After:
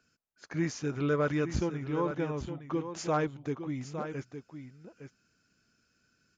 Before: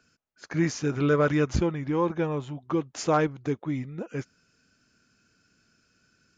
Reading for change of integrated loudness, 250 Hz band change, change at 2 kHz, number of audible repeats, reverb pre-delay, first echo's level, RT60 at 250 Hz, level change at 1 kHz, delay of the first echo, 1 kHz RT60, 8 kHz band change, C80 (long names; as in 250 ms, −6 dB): −5.5 dB, −5.5 dB, −5.5 dB, 1, no reverb audible, −9.5 dB, no reverb audible, −5.5 dB, 862 ms, no reverb audible, can't be measured, no reverb audible